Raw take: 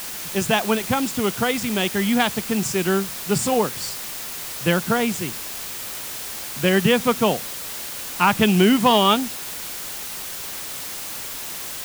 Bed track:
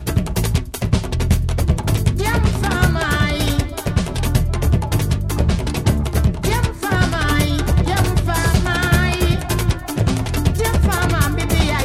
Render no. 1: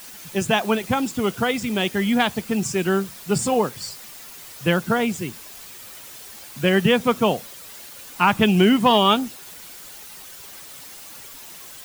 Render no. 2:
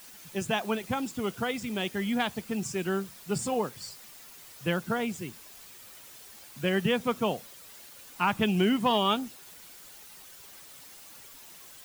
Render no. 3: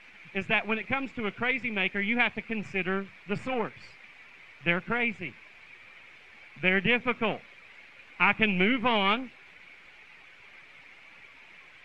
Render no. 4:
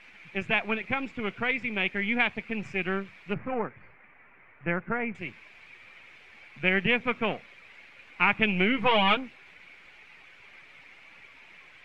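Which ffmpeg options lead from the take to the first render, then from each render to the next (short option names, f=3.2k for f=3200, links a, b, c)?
-af "afftdn=nr=10:nf=-32"
-af "volume=-9dB"
-af "aeval=exprs='if(lt(val(0),0),0.447*val(0),val(0))':c=same,lowpass=f=2.3k:t=q:w=6"
-filter_complex "[0:a]asettb=1/sr,asplit=3[a][b][c];[a]atrim=end=3.344[d];[b]atrim=start=3.34:end=5.15,asetpts=PTS-STARTPTS,afade=t=in:d=0.004:c=qsin,afade=t=out:st=1.806:d=0.004:c=qsin,lowpass=f=1.9k:w=0.5412,lowpass=f=1.9k:w=1.3066[e];[c]atrim=start=5.146[f];[d][e]acrossfade=d=0.004:c1=hsin:c2=qsin[g];[g][f]acrossfade=d=0.004:c1=qsin:c2=hsin,asettb=1/sr,asplit=3[h][i][j];[h]atrim=end=8.774[k];[i]atrim=start=8.77:end=9.17,asetpts=PTS-STARTPTS,afade=t=in:d=0.004:c=qsin,afade=t=out:st=0.396:d=0.004:c=qsin,aecho=1:1:6.3:0.94,atrim=end_sample=17640[l];[j]atrim=start=9.166[m];[k][l]acrossfade=d=0.004:c1=hsin:c2=qsin[n];[n][m]acrossfade=d=0.004:c1=qsin:c2=hsin"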